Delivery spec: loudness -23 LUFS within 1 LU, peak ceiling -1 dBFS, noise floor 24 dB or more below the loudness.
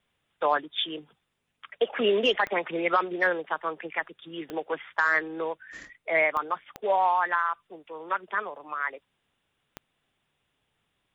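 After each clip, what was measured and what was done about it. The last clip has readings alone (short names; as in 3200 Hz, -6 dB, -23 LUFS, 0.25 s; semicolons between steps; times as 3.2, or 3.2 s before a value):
clicks 5; loudness -27.5 LUFS; peak -12.5 dBFS; loudness target -23.0 LUFS
-> de-click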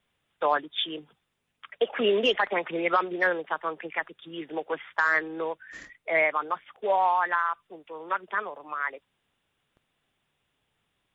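clicks 0; loudness -27.5 LUFS; peak -12.5 dBFS; loudness target -23.0 LUFS
-> gain +4.5 dB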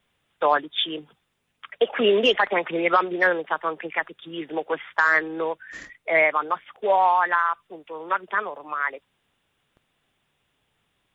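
loudness -23.0 LUFS; peak -8.0 dBFS; noise floor -73 dBFS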